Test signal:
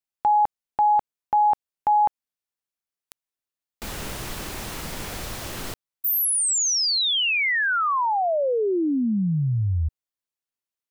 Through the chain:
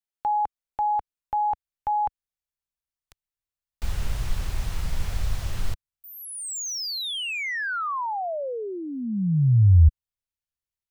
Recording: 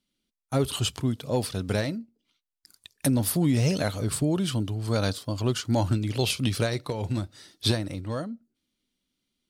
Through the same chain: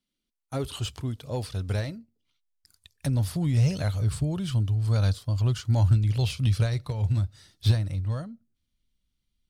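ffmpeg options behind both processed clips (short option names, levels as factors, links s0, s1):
-filter_complex "[0:a]acrossover=split=8300[s0][s1];[s1]acompressor=threshold=0.00708:ratio=4:attack=1:release=60[s2];[s0][s2]amix=inputs=2:normalize=0,asubboost=boost=11.5:cutoff=88,acrossover=split=1500[s3][s4];[s4]asoftclip=type=tanh:threshold=0.075[s5];[s3][s5]amix=inputs=2:normalize=0,volume=0.562"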